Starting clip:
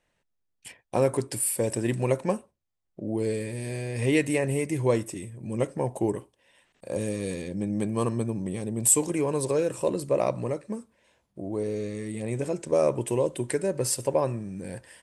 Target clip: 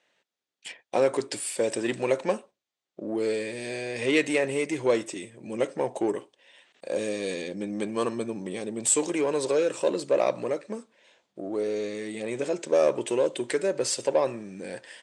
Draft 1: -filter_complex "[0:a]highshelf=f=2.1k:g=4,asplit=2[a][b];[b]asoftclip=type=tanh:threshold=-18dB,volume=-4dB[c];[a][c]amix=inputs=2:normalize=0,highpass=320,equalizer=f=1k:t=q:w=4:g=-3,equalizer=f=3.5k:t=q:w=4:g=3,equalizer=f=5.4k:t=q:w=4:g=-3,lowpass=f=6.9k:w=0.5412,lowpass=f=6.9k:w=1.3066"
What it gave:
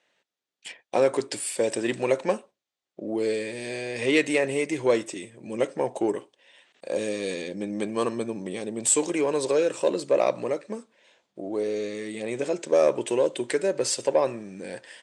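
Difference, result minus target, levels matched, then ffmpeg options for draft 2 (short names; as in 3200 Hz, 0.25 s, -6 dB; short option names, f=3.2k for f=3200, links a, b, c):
soft clip: distortion -7 dB
-filter_complex "[0:a]highshelf=f=2.1k:g=4,asplit=2[a][b];[b]asoftclip=type=tanh:threshold=-27.5dB,volume=-4dB[c];[a][c]amix=inputs=2:normalize=0,highpass=320,equalizer=f=1k:t=q:w=4:g=-3,equalizer=f=3.5k:t=q:w=4:g=3,equalizer=f=5.4k:t=q:w=4:g=-3,lowpass=f=6.9k:w=0.5412,lowpass=f=6.9k:w=1.3066"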